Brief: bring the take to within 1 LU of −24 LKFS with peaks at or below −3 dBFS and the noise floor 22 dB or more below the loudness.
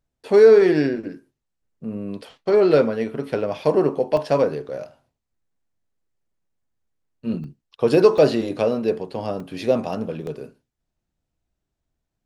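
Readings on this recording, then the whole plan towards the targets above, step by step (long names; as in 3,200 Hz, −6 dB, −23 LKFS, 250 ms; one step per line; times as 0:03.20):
number of dropouts 5; longest dropout 2.1 ms; integrated loudness −19.5 LKFS; sample peak −3.0 dBFS; target loudness −24.0 LKFS
→ repair the gap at 0:04.17/0:07.44/0:08.18/0:09.40/0:10.27, 2.1 ms
level −4.5 dB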